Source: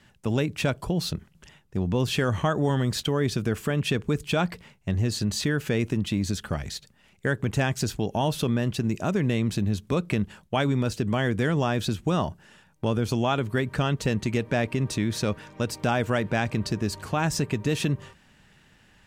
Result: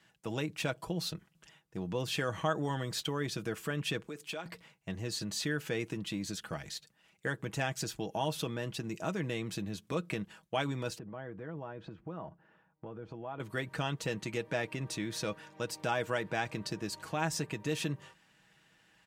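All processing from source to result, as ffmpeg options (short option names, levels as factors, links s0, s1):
-filter_complex "[0:a]asettb=1/sr,asplit=3[s0][s1][s2];[s0]atrim=end=4.064[s3];[s1]atrim=start=4.06:end=4.46,asetpts=PTS-STARTPTS,afade=t=in:d=0.004:c=qsin,afade=t=out:st=0.396:d=0.004:c=qsin,highpass=250,acompressor=threshold=0.0398:ratio=12:attack=3.2:release=140:knee=1:detection=peak[s4];[s2]atrim=start=4.456[s5];[s3][s4]acrossfade=d=0.004:c1=hsin:c2=qsin[s6];[s6][s5]acrossfade=d=0.004:c1=qsin:c2=hsin,asettb=1/sr,asplit=3[s7][s8][s9];[s7]atrim=end=10.984[s10];[s8]atrim=start=10.98:end=13.4,asetpts=PTS-STARTPTS,afade=t=in:d=0.004:c=qsin,afade=t=out:st=2.416:d=0.004:c=qsin,lowpass=1300,acompressor=threshold=0.0316:ratio=4:attack=3.2:release=140:knee=1:detection=peak[s11];[s9]atrim=start=13.396[s12];[s10][s11]acrossfade=d=0.004:c1=hsin:c2=qsin[s13];[s13][s12]acrossfade=d=0.004:c1=qsin:c2=hsin,highpass=46,lowshelf=f=230:g=-10,aecho=1:1:6.2:0.49,volume=0.447"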